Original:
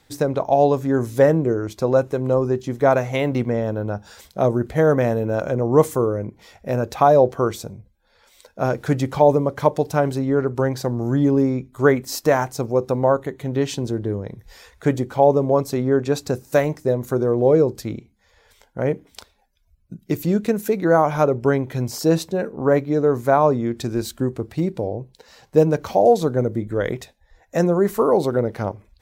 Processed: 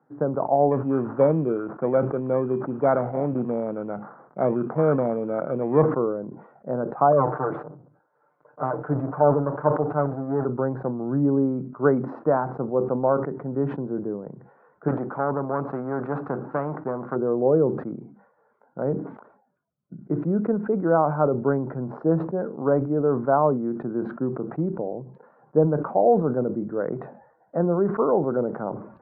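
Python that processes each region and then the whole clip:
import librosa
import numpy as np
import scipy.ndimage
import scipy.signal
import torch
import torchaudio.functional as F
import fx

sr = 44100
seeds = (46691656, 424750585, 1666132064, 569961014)

y = fx.chain(x, sr, fx.sample_hold(seeds[0], rate_hz=2800.0, jitter_pct=0),
    fx.peak_eq(hz=13000.0, db=7.5, octaves=2.8), at=(0.71, 5.83))
y = fx.chain(y, sr, fx.lower_of_two(delay_ms=6.7),
    fx.peak_eq(hz=210.0, db=-14.0, octaves=0.34), at=(7.12, 10.45))
y = fx.chain(y, sr, fx.self_delay(depth_ms=0.14),
    fx.spectral_comp(ratio=2.0), at=(14.88, 17.16))
y = scipy.signal.sosfilt(scipy.signal.cheby1(4, 1.0, [140.0, 1400.0], 'bandpass', fs=sr, output='sos'), y)
y = fx.sustainer(y, sr, db_per_s=85.0)
y = y * librosa.db_to_amplitude(-3.5)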